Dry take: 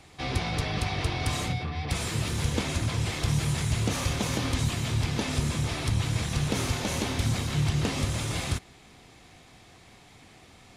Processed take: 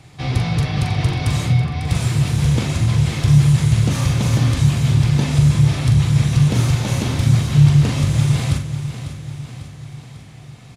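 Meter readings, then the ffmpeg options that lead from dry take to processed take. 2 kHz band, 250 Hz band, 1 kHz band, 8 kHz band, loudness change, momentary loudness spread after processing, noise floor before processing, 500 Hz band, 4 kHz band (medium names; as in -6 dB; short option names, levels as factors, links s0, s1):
+4.5 dB, +12.0 dB, +4.5 dB, +4.0 dB, +12.0 dB, 15 LU, -54 dBFS, +4.5 dB, +4.0 dB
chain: -filter_complex "[0:a]equalizer=f=130:w=1.8:g=14.5,asplit=2[s0][s1];[s1]adelay=42,volume=0.447[s2];[s0][s2]amix=inputs=2:normalize=0,aecho=1:1:547|1094|1641|2188|2735|3282:0.266|0.146|0.0805|0.0443|0.0243|0.0134,volume=1.41"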